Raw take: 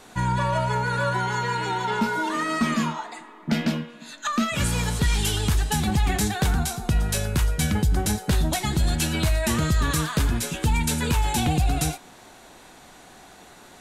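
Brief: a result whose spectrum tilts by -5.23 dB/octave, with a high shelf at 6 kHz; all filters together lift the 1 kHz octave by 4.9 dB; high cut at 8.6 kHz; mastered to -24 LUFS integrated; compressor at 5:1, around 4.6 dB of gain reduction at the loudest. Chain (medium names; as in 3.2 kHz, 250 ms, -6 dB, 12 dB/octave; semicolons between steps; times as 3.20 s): low-pass 8.6 kHz; peaking EQ 1 kHz +6 dB; treble shelf 6 kHz -8 dB; compression 5:1, threshold -22 dBFS; trim +3 dB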